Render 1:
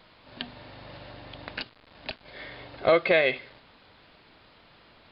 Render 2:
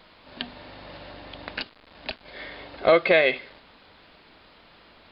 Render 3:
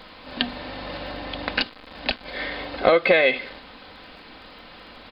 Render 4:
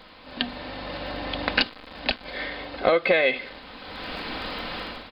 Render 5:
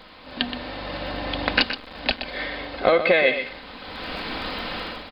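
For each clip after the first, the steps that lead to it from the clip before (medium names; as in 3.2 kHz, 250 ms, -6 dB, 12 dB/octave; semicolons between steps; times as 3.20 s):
peaking EQ 120 Hz -11.5 dB 0.34 oct; trim +3 dB
comb 3.9 ms, depth 35%; compression 4:1, threshold -23 dBFS, peak gain reduction 9 dB; crackle 21 per s -57 dBFS; trim +8.5 dB
level rider gain up to 16 dB; trim -4 dB
delay 123 ms -10 dB; trim +2 dB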